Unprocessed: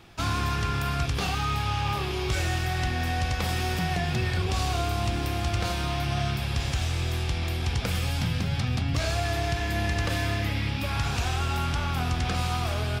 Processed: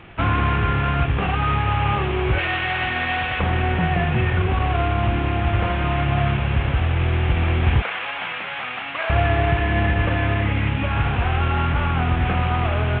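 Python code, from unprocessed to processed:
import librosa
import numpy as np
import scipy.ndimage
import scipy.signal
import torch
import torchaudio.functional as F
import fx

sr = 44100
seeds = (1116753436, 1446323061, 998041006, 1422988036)

y = fx.cvsd(x, sr, bps=16000)
y = fx.tilt_eq(y, sr, slope=3.5, at=(2.38, 3.4))
y = fx.highpass(y, sr, hz=850.0, slope=12, at=(7.82, 9.1))
y = fx.rider(y, sr, range_db=5, speed_s=2.0)
y = F.gain(torch.from_numpy(y), 8.5).numpy()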